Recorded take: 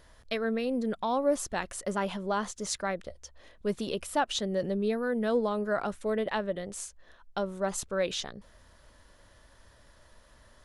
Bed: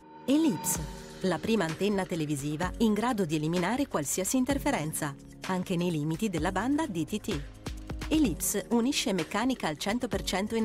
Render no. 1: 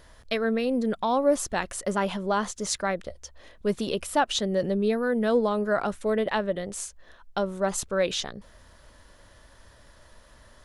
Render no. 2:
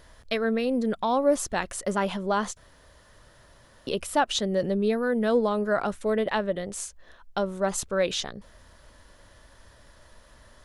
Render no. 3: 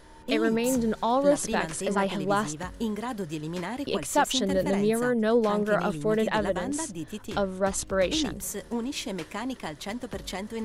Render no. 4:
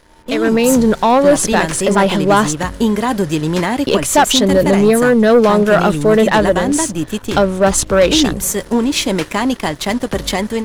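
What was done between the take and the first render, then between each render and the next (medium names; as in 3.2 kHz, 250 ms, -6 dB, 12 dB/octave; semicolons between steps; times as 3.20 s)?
trim +4.5 dB
2.57–3.87 s: room tone
add bed -4.5 dB
waveshaping leveller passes 2; level rider gain up to 9.5 dB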